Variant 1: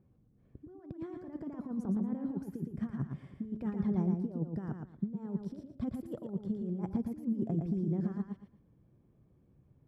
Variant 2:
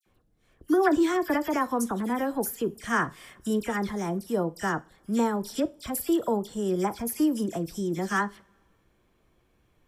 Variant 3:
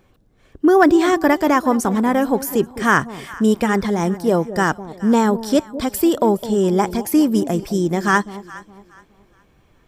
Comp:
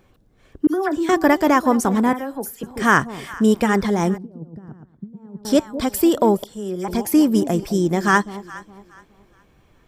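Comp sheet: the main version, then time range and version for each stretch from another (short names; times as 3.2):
3
0.67–1.09 from 2
2.13–2.63 from 2
4.18–5.45 from 1
6.44–6.88 from 2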